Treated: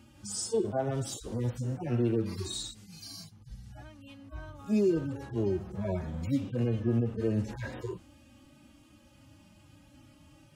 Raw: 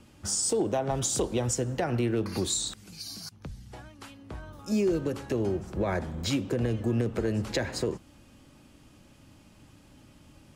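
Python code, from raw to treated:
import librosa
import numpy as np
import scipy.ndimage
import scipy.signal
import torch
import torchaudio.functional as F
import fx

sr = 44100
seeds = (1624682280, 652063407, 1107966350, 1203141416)

y = fx.hpss_only(x, sr, part='harmonic')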